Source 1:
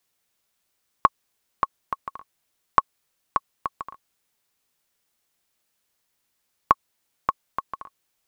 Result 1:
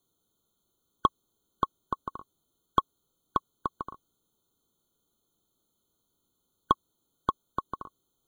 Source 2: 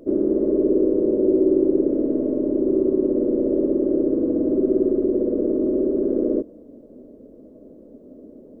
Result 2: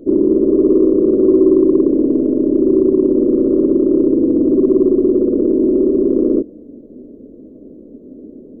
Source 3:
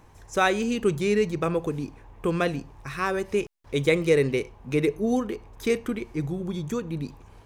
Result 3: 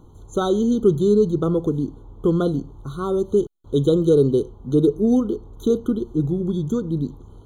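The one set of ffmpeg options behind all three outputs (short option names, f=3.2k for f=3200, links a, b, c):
-af "acontrast=88,lowshelf=f=500:t=q:w=1.5:g=7.5,afftfilt=real='re*eq(mod(floor(b*sr/1024/1500),2),0)':imag='im*eq(mod(floor(b*sr/1024/1500),2),0)':win_size=1024:overlap=0.75,volume=-8dB"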